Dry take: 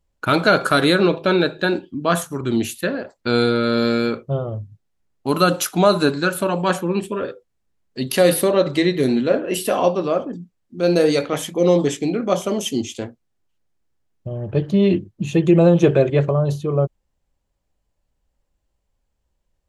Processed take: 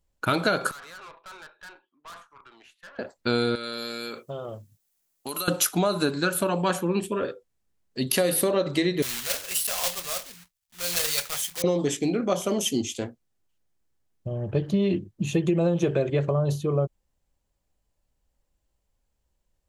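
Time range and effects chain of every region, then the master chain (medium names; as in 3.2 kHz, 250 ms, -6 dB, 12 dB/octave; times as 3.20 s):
0.71–2.99 s: ladder band-pass 1.3 kHz, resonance 45% + valve stage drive 38 dB, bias 0.5
3.55–5.48 s: RIAA curve recording + compression, threshold -27 dBFS
9.02–11.64 s: block-companded coder 3-bit + amplifier tone stack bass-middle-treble 10-0-10
whole clip: compression 10:1, threshold -16 dBFS; treble shelf 5.6 kHz +6 dB; trim -3 dB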